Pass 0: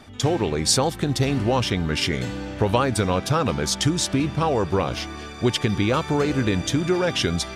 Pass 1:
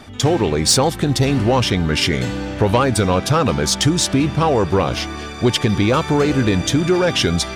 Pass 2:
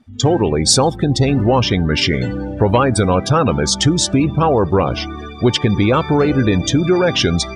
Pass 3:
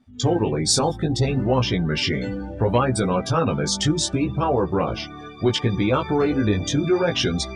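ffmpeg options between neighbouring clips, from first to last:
-af "asoftclip=type=tanh:threshold=0.251,volume=2.11"
-af "afftdn=nr=24:nf=-26,volume=1.26"
-af "flanger=delay=15.5:depth=4.7:speed=0.67,volume=0.668"

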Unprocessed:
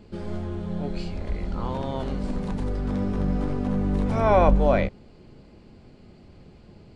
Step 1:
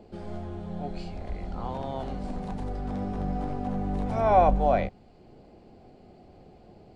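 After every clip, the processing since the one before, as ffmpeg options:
-filter_complex "[0:a]equalizer=f=740:w=5.4:g=12.5,acrossover=split=340|620[s0][s1][s2];[s1]acompressor=mode=upward:threshold=0.00891:ratio=2.5[s3];[s0][s3][s2]amix=inputs=3:normalize=0,volume=0.501"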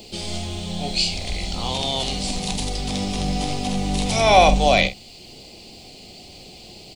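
-filter_complex "[0:a]aexciter=amount=12.4:drive=6.7:freq=2400,asplit=2[s0][s1];[s1]adelay=47,volume=0.299[s2];[s0][s2]amix=inputs=2:normalize=0,volume=1.88"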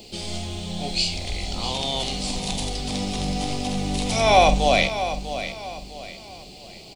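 -af "aecho=1:1:648|1296|1944|2592:0.282|0.101|0.0365|0.0131,volume=0.794"

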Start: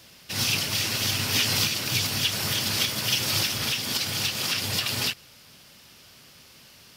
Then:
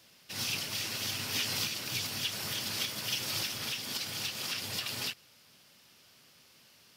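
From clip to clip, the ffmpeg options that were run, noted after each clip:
-af "highpass=f=140:p=1,volume=0.355"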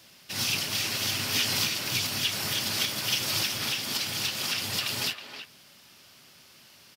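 -filter_complex "[0:a]bandreject=f=480:w=12,asplit=2[s0][s1];[s1]adelay=320,highpass=300,lowpass=3400,asoftclip=type=hard:threshold=0.0376,volume=0.398[s2];[s0][s2]amix=inputs=2:normalize=0,volume=2"

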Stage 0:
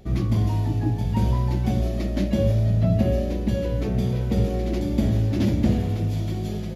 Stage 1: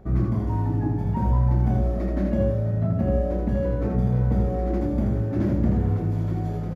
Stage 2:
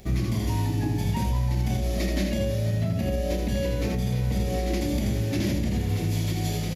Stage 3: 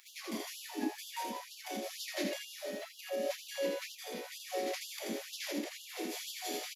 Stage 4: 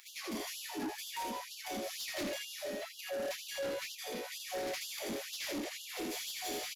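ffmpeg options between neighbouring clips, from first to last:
-filter_complex "[0:a]highshelf=f=2100:t=q:w=1.5:g=-13,acompressor=threshold=0.0708:ratio=2,asplit=2[s0][s1];[s1]aecho=0:1:31|80:0.447|0.631[s2];[s0][s2]amix=inputs=2:normalize=0"
-af "alimiter=limit=0.133:level=0:latency=1:release=117,aexciter=amount=14.1:drive=2.4:freq=2100"
-af "afftfilt=real='re*gte(b*sr/1024,210*pow(2800/210,0.5+0.5*sin(2*PI*2.1*pts/sr)))':imag='im*gte(b*sr/1024,210*pow(2800/210,0.5+0.5*sin(2*PI*2.1*pts/sr)))':win_size=1024:overlap=0.75,volume=0.631"
-af "asoftclip=type=tanh:threshold=0.0133,volume=1.5"

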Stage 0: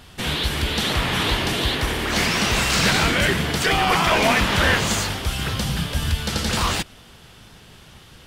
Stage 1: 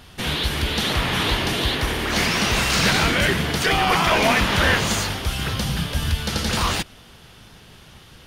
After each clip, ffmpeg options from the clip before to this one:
-af "bandreject=f=7700:w=9.7"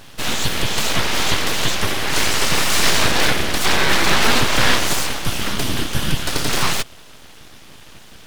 -af "aeval=exprs='abs(val(0))':c=same,volume=1.88"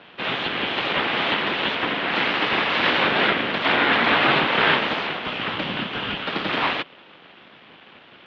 -af "highpass=f=290:t=q:w=0.5412,highpass=f=290:t=q:w=1.307,lowpass=f=3500:t=q:w=0.5176,lowpass=f=3500:t=q:w=0.7071,lowpass=f=3500:t=q:w=1.932,afreqshift=-100"

